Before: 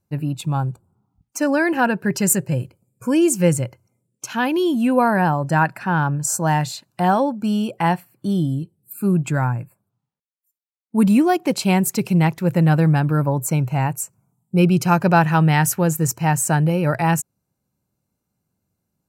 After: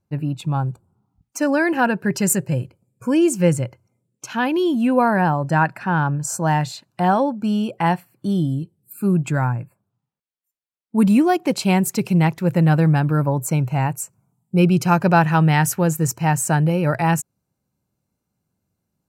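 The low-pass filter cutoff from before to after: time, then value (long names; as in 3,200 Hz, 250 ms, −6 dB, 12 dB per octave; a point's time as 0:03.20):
low-pass filter 6 dB per octave
3,900 Hz
from 0:00.66 9,800 Hz
from 0:02.60 5,300 Hz
from 0:07.86 9,200 Hz
from 0:09.52 4,200 Hz
from 0:10.98 10,000 Hz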